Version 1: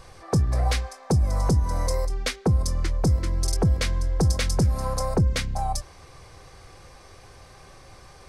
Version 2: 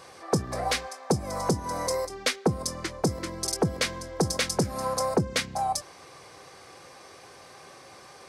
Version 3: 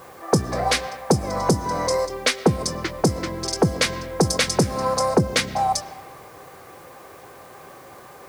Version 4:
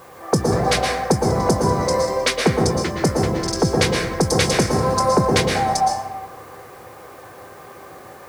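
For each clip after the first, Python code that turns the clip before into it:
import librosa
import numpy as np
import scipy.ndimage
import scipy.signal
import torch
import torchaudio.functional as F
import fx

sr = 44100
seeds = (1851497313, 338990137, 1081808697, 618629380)

y1 = scipy.signal.sosfilt(scipy.signal.butter(2, 220.0, 'highpass', fs=sr, output='sos'), x)
y1 = y1 * librosa.db_to_amplitude(2.0)
y2 = fx.rev_freeverb(y1, sr, rt60_s=1.5, hf_ratio=0.6, predelay_ms=80, drr_db=16.5)
y2 = fx.env_lowpass(y2, sr, base_hz=1500.0, full_db=-21.5)
y2 = fx.quant_dither(y2, sr, seeds[0], bits=10, dither='triangular')
y2 = y2 * librosa.db_to_amplitude(6.5)
y3 = fx.rev_plate(y2, sr, seeds[1], rt60_s=1.2, hf_ratio=0.35, predelay_ms=105, drr_db=0.0)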